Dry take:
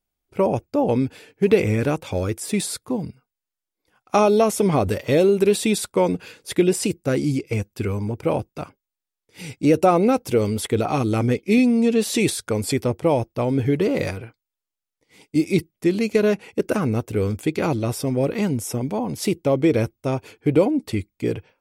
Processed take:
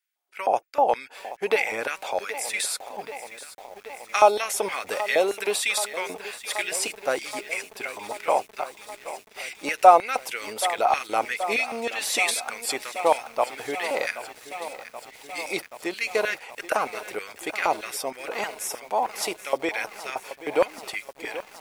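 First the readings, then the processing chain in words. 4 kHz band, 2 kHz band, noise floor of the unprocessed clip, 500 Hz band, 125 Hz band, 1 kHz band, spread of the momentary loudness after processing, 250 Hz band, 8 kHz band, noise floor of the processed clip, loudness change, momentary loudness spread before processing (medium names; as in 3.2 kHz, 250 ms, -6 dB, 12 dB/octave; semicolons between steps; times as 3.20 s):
+1.5 dB, +4.5 dB, under -85 dBFS, -6.0 dB, under -30 dB, +4.0 dB, 14 LU, -19.0 dB, +0.5 dB, -52 dBFS, -4.5 dB, 10 LU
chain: LFO high-pass square 3.2 Hz 770–1800 Hz; bit-crushed delay 778 ms, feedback 80%, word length 7-bit, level -14 dB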